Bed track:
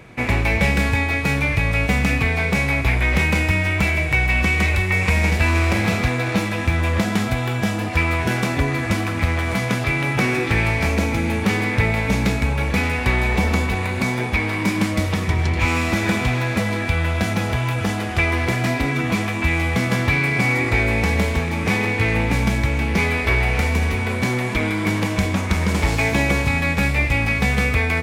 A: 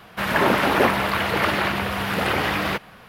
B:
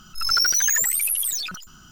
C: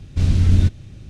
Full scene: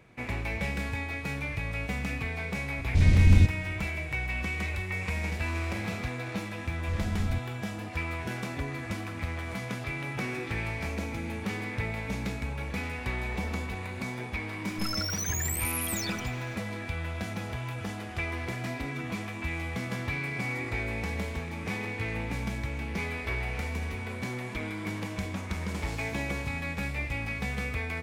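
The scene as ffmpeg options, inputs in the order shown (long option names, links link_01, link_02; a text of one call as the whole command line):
ffmpeg -i bed.wav -i cue0.wav -i cue1.wav -i cue2.wav -filter_complex "[3:a]asplit=2[link_01][link_02];[0:a]volume=-14dB[link_03];[link_01]asuperstop=centerf=1300:order=4:qfactor=1.2[link_04];[2:a]alimiter=limit=-22dB:level=0:latency=1:release=328[link_05];[link_04]atrim=end=1.09,asetpts=PTS-STARTPTS,volume=-4dB,afade=type=in:duration=0.004:curve=hsin,afade=type=out:start_time=1.086:duration=0.004:curve=hsin,adelay=2780[link_06];[link_02]atrim=end=1.09,asetpts=PTS-STARTPTS,volume=-16.5dB,afade=type=in:duration=0.004:curve=hsin,afade=type=out:start_time=1.086:duration=0.004:curve=hsin,adelay=6710[link_07];[link_05]atrim=end=1.91,asetpts=PTS-STARTPTS,volume=-5dB,afade=type=in:duration=0.004:curve=hsin,afade=type=out:start_time=1.906:duration=0.004:curve=hsin,adelay=14640[link_08];[link_03][link_06][link_07][link_08]amix=inputs=4:normalize=0" out.wav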